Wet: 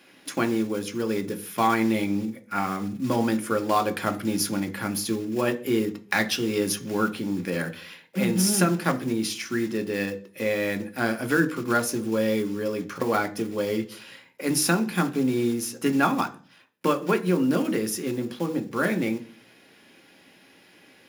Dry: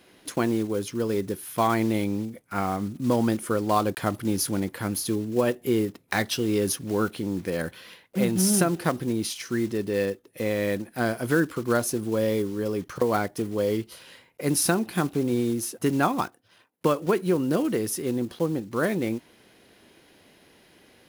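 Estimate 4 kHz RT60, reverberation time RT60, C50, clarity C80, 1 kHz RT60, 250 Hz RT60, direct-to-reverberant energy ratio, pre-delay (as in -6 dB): 0.50 s, 0.40 s, 17.0 dB, 21.0 dB, 0.40 s, 0.55 s, 6.0 dB, 3 ms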